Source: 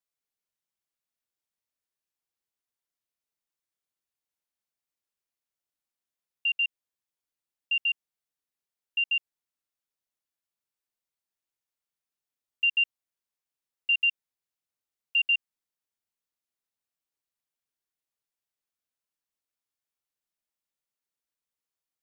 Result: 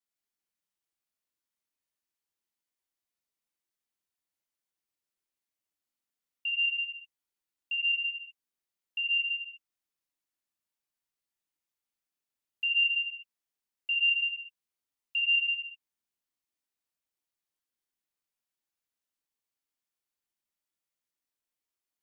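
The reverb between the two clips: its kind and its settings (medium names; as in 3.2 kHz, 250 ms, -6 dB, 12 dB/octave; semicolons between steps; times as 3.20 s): gated-style reverb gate 410 ms falling, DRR -2 dB; trim -4.5 dB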